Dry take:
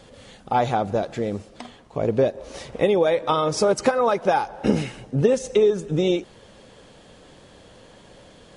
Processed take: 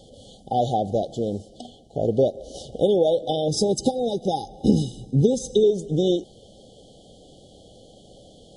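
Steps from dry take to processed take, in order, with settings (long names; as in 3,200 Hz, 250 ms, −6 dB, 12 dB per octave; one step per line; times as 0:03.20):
linear-phase brick-wall band-stop 830–2,900 Hz
0:03.48–0:05.64: comb filter 0.8 ms, depth 66%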